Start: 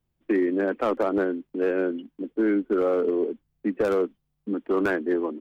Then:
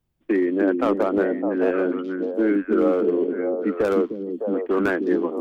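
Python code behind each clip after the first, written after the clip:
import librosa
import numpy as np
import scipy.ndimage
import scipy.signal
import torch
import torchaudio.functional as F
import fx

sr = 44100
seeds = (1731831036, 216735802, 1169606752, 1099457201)

y = fx.echo_stepped(x, sr, ms=305, hz=240.0, octaves=1.4, feedback_pct=70, wet_db=-0.5)
y = y * librosa.db_to_amplitude(2.0)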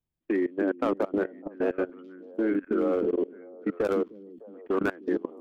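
y = fx.level_steps(x, sr, step_db=21)
y = y * librosa.db_to_amplitude(-3.5)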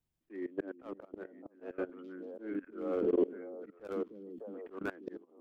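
y = fx.auto_swell(x, sr, attack_ms=624.0)
y = y * librosa.db_to_amplitude(1.0)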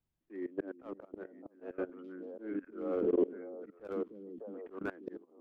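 y = fx.high_shelf(x, sr, hz=3000.0, db=-8.0)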